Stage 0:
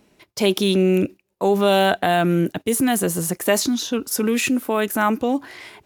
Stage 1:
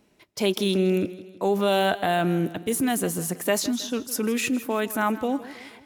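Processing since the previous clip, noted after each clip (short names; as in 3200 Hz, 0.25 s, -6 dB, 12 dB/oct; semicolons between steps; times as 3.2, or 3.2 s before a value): warbling echo 0.16 s, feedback 48%, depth 59 cents, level -16.5 dB; gain -5 dB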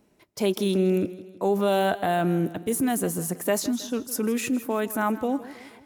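bell 3200 Hz -6 dB 1.9 oct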